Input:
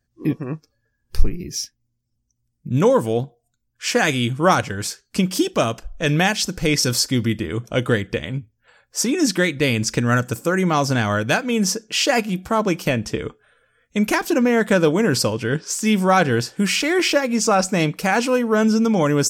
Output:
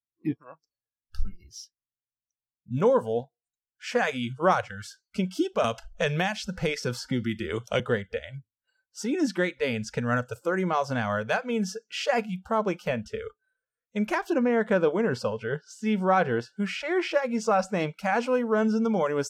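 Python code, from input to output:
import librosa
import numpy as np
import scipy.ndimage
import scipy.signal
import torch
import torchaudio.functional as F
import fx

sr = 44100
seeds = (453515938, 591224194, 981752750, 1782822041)

y = fx.band_squash(x, sr, depth_pct=100, at=(5.64, 7.8))
y = fx.high_shelf(y, sr, hz=5600.0, db=-8.0, at=(14.35, 17.14))
y = fx.lowpass(y, sr, hz=1300.0, slope=6)
y = fx.low_shelf(y, sr, hz=200.0, db=-9.0)
y = fx.noise_reduce_blind(y, sr, reduce_db=25)
y = y * librosa.db_to_amplitude(-3.5)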